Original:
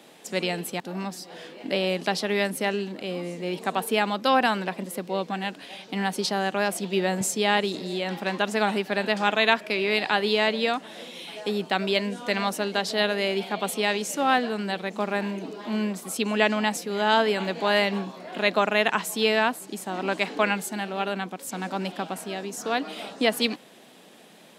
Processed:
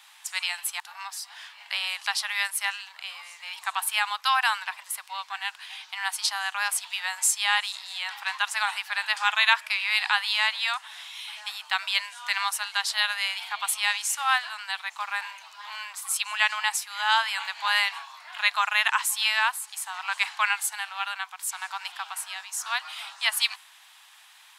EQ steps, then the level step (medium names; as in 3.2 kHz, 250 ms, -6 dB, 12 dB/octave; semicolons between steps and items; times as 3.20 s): steep high-pass 900 Hz 48 dB/octave; dynamic bell 9.6 kHz, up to +6 dB, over -50 dBFS, Q 1.5; +2.0 dB